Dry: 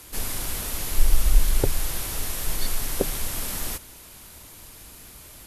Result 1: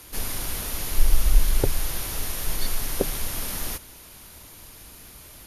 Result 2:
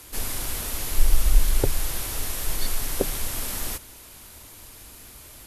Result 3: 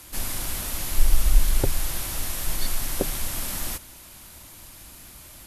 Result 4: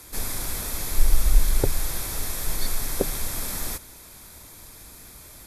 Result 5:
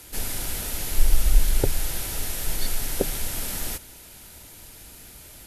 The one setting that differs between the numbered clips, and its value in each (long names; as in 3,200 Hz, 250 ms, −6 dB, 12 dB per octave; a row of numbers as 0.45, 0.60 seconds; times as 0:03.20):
notch filter, centre frequency: 7,800, 170, 440, 2,900, 1,100 Hertz